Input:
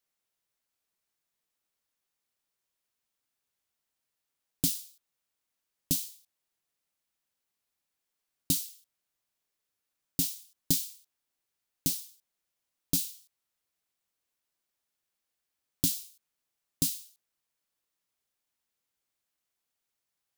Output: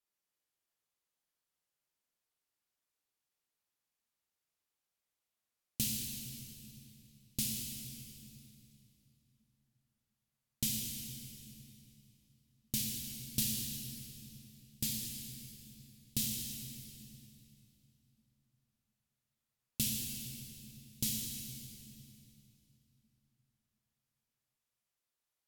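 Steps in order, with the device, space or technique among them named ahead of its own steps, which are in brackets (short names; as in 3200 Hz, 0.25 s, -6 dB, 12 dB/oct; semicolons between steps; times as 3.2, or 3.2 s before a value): slowed and reverbed (varispeed -20%; reverb RT60 3.0 s, pre-delay 21 ms, DRR -0.5 dB); gain -8 dB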